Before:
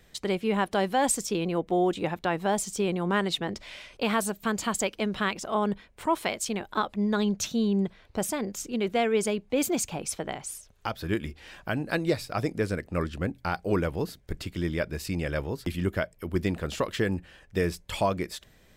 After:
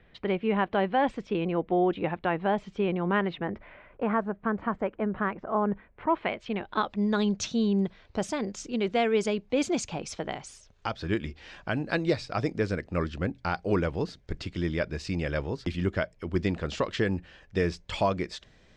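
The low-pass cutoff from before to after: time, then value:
low-pass 24 dB/octave
3.15 s 2.9 kHz
3.78 s 1.7 kHz
5.53 s 1.7 kHz
6.57 s 3.2 kHz
6.99 s 6.3 kHz

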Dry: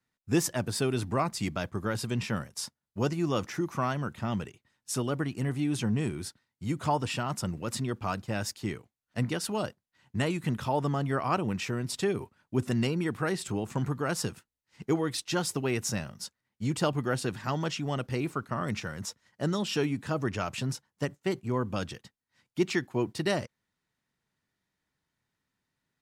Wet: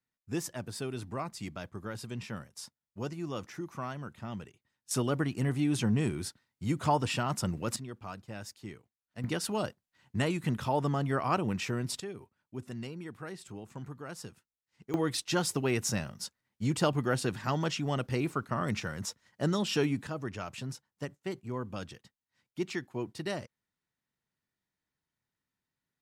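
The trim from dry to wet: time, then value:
-8.5 dB
from 4.91 s +0.5 dB
from 7.76 s -10.5 dB
from 9.24 s -1 dB
from 12.00 s -12.5 dB
from 14.94 s 0 dB
from 20.07 s -7 dB

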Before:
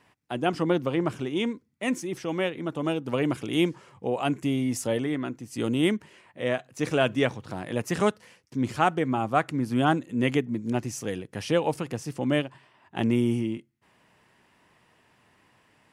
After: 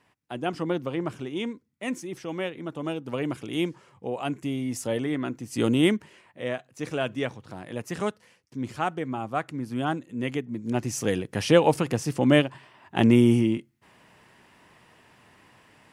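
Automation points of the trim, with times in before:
4.61 s -3.5 dB
5.64 s +4.5 dB
6.67 s -5 dB
10.45 s -5 dB
11.05 s +6 dB

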